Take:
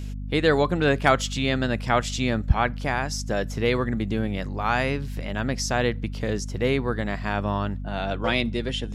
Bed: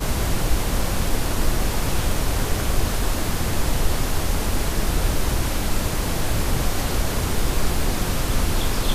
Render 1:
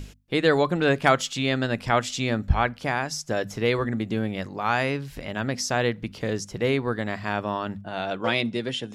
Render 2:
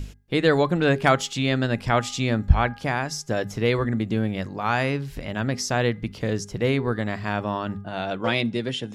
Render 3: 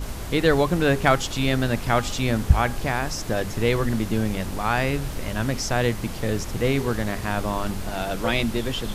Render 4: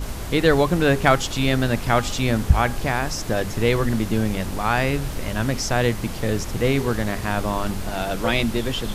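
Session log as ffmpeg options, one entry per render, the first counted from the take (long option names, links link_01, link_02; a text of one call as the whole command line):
ffmpeg -i in.wav -af "bandreject=frequency=50:width_type=h:width=6,bandreject=frequency=100:width_type=h:width=6,bandreject=frequency=150:width_type=h:width=6,bandreject=frequency=200:width_type=h:width=6,bandreject=frequency=250:width_type=h:width=6" out.wav
ffmpeg -i in.wav -af "lowshelf=frequency=190:gain=6,bandreject=frequency=408:width_type=h:width=4,bandreject=frequency=816:width_type=h:width=4,bandreject=frequency=1224:width_type=h:width=4,bandreject=frequency=1632:width_type=h:width=4,bandreject=frequency=2040:width_type=h:width=4" out.wav
ffmpeg -i in.wav -i bed.wav -filter_complex "[1:a]volume=-10.5dB[link_01];[0:a][link_01]amix=inputs=2:normalize=0" out.wav
ffmpeg -i in.wav -af "volume=2dB,alimiter=limit=-2dB:level=0:latency=1" out.wav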